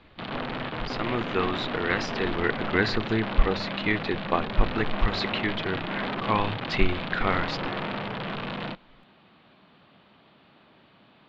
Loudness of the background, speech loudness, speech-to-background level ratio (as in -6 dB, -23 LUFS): -32.0 LUFS, -29.0 LUFS, 3.0 dB